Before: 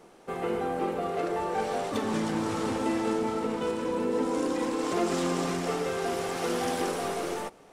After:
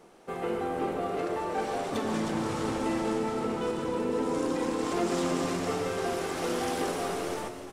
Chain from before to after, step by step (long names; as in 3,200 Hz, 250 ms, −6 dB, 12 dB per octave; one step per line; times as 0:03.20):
echo with shifted repeats 313 ms, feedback 35%, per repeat −77 Hz, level −10.5 dB
on a send at −11.5 dB: convolution reverb RT60 0.25 s, pre-delay 100 ms
on the sum: level −1.5 dB